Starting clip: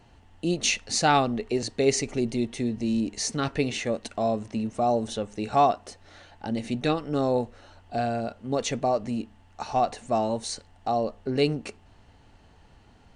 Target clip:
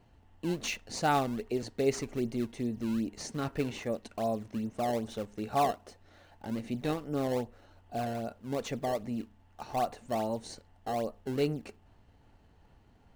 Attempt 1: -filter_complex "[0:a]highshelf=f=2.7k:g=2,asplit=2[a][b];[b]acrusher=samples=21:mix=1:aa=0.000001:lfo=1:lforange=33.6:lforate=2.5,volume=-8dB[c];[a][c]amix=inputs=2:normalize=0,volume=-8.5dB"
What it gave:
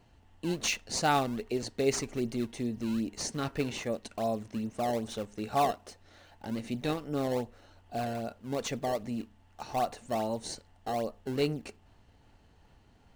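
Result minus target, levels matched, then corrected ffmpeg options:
4000 Hz band +3.5 dB
-filter_complex "[0:a]highshelf=f=2.7k:g=-5.5,asplit=2[a][b];[b]acrusher=samples=21:mix=1:aa=0.000001:lfo=1:lforange=33.6:lforate=2.5,volume=-8dB[c];[a][c]amix=inputs=2:normalize=0,volume=-8.5dB"

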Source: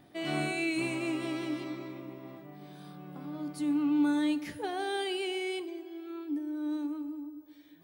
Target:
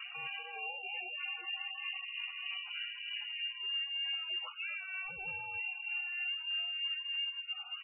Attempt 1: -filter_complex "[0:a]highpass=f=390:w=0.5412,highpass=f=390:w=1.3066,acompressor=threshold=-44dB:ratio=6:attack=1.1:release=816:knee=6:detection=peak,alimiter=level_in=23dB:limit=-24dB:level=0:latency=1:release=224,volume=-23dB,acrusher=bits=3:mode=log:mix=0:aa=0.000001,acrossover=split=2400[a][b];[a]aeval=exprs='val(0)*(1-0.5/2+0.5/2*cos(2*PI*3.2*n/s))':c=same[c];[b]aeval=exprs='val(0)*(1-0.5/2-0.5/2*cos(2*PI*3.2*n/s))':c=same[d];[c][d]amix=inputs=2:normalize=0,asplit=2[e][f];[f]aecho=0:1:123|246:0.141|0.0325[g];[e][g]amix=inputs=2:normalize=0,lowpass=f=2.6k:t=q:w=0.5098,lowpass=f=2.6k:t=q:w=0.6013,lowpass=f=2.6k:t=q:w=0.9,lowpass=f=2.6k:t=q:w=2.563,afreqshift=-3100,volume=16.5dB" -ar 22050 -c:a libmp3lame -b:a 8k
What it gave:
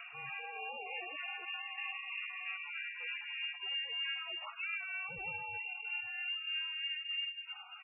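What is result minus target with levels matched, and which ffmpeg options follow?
500 Hz band +5.5 dB
-filter_complex "[0:a]highpass=f=170:w=0.5412,highpass=f=170:w=1.3066,acompressor=threshold=-44dB:ratio=6:attack=1.1:release=816:knee=6:detection=peak,alimiter=level_in=23dB:limit=-24dB:level=0:latency=1:release=224,volume=-23dB,acrusher=bits=3:mode=log:mix=0:aa=0.000001,acrossover=split=2400[a][b];[a]aeval=exprs='val(0)*(1-0.5/2+0.5/2*cos(2*PI*3.2*n/s))':c=same[c];[b]aeval=exprs='val(0)*(1-0.5/2-0.5/2*cos(2*PI*3.2*n/s))':c=same[d];[c][d]amix=inputs=2:normalize=0,asplit=2[e][f];[f]aecho=0:1:123|246:0.141|0.0325[g];[e][g]amix=inputs=2:normalize=0,lowpass=f=2.6k:t=q:w=0.5098,lowpass=f=2.6k:t=q:w=0.6013,lowpass=f=2.6k:t=q:w=0.9,lowpass=f=2.6k:t=q:w=2.563,afreqshift=-3100,volume=16.5dB" -ar 22050 -c:a libmp3lame -b:a 8k

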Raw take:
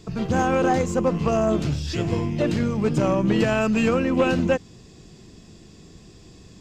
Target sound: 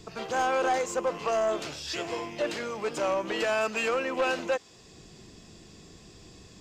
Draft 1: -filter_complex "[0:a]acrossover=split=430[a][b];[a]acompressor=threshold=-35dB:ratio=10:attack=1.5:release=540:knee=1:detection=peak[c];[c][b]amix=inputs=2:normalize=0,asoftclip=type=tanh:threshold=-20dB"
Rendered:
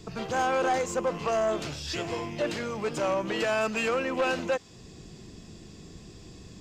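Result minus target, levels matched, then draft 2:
compressor: peak gain reduction -10.5 dB
-filter_complex "[0:a]acrossover=split=430[a][b];[a]acompressor=threshold=-46.5dB:ratio=10:attack=1.5:release=540:knee=1:detection=peak[c];[c][b]amix=inputs=2:normalize=0,asoftclip=type=tanh:threshold=-20dB"

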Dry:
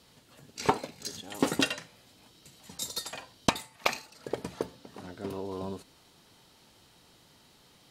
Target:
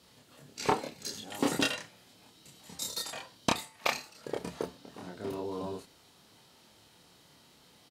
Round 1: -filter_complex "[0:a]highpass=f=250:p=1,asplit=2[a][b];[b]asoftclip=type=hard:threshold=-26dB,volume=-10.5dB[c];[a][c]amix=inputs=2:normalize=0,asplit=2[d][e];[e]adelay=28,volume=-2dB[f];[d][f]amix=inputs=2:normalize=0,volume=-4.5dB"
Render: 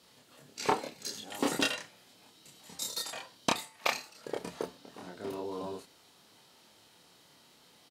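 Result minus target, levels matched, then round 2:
125 Hz band -4.5 dB
-filter_complex "[0:a]highpass=f=74:p=1,asplit=2[a][b];[b]asoftclip=type=hard:threshold=-26dB,volume=-10.5dB[c];[a][c]amix=inputs=2:normalize=0,asplit=2[d][e];[e]adelay=28,volume=-2dB[f];[d][f]amix=inputs=2:normalize=0,volume=-4.5dB"

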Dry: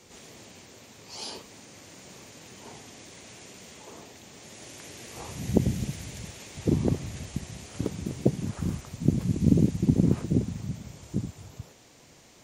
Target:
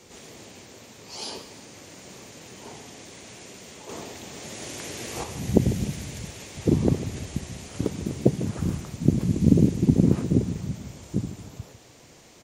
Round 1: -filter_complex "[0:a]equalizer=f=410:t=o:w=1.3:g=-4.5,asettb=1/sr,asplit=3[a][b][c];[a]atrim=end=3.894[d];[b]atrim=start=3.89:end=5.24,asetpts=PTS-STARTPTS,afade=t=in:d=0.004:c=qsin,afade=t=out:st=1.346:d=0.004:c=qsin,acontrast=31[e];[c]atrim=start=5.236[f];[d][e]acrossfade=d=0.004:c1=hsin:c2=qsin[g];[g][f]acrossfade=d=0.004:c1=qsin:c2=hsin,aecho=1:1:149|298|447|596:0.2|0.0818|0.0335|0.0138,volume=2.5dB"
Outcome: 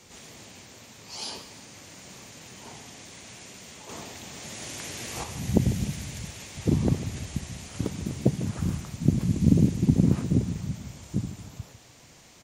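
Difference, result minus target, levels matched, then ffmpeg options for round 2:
500 Hz band -4.0 dB
-filter_complex "[0:a]equalizer=f=410:t=o:w=1.3:g=2,asettb=1/sr,asplit=3[a][b][c];[a]atrim=end=3.894[d];[b]atrim=start=3.89:end=5.24,asetpts=PTS-STARTPTS,afade=t=in:d=0.004:c=qsin,afade=t=out:st=1.346:d=0.004:c=qsin,acontrast=31[e];[c]atrim=start=5.236[f];[d][e]acrossfade=d=0.004:c1=hsin:c2=qsin[g];[g][f]acrossfade=d=0.004:c1=qsin:c2=hsin,aecho=1:1:149|298|447|596:0.2|0.0818|0.0335|0.0138,volume=2.5dB"

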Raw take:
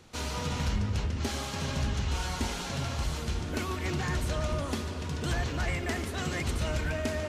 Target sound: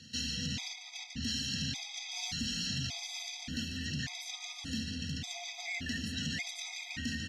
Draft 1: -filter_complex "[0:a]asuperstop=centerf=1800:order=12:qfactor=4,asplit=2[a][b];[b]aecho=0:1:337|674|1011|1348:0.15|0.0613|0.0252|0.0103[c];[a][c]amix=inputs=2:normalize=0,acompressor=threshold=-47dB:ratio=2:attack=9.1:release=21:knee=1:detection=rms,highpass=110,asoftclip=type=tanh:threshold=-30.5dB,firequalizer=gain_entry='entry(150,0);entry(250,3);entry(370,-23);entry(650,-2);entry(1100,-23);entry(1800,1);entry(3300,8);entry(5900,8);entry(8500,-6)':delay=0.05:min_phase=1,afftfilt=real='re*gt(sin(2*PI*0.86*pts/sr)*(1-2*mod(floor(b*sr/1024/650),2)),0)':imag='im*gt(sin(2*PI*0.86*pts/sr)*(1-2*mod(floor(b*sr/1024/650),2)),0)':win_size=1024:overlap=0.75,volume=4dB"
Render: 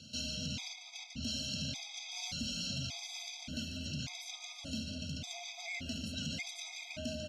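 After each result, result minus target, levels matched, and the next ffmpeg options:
500 Hz band +9.0 dB; compressor: peak gain reduction +3 dB
-filter_complex "[0:a]asuperstop=centerf=600:order=12:qfactor=4,asplit=2[a][b];[b]aecho=0:1:337|674|1011|1348:0.15|0.0613|0.0252|0.0103[c];[a][c]amix=inputs=2:normalize=0,acompressor=threshold=-47dB:ratio=2:attack=9.1:release=21:knee=1:detection=rms,highpass=110,asoftclip=type=tanh:threshold=-30.5dB,firequalizer=gain_entry='entry(150,0);entry(250,3);entry(370,-23);entry(650,-2);entry(1100,-23);entry(1800,1);entry(3300,8);entry(5900,8);entry(8500,-6)':delay=0.05:min_phase=1,afftfilt=real='re*gt(sin(2*PI*0.86*pts/sr)*(1-2*mod(floor(b*sr/1024/650),2)),0)':imag='im*gt(sin(2*PI*0.86*pts/sr)*(1-2*mod(floor(b*sr/1024/650),2)),0)':win_size=1024:overlap=0.75,volume=4dB"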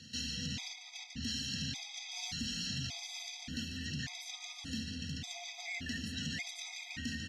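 compressor: peak gain reduction +3.5 dB
-filter_complex "[0:a]asuperstop=centerf=600:order=12:qfactor=4,asplit=2[a][b];[b]aecho=0:1:337|674|1011|1348:0.15|0.0613|0.0252|0.0103[c];[a][c]amix=inputs=2:normalize=0,acompressor=threshold=-40.5dB:ratio=2:attack=9.1:release=21:knee=1:detection=rms,highpass=110,asoftclip=type=tanh:threshold=-30.5dB,firequalizer=gain_entry='entry(150,0);entry(250,3);entry(370,-23);entry(650,-2);entry(1100,-23);entry(1800,1);entry(3300,8);entry(5900,8);entry(8500,-6)':delay=0.05:min_phase=1,afftfilt=real='re*gt(sin(2*PI*0.86*pts/sr)*(1-2*mod(floor(b*sr/1024/650),2)),0)':imag='im*gt(sin(2*PI*0.86*pts/sr)*(1-2*mod(floor(b*sr/1024/650),2)),0)':win_size=1024:overlap=0.75,volume=4dB"

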